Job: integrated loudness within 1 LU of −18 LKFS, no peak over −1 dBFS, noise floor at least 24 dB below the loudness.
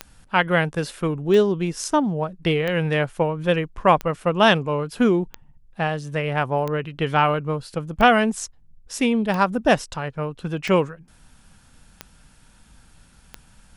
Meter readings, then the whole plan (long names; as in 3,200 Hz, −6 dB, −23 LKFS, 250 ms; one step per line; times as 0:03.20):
number of clicks 11; integrated loudness −21.5 LKFS; sample peak −2.0 dBFS; target loudness −18.0 LKFS
→ click removal
level +3.5 dB
brickwall limiter −1 dBFS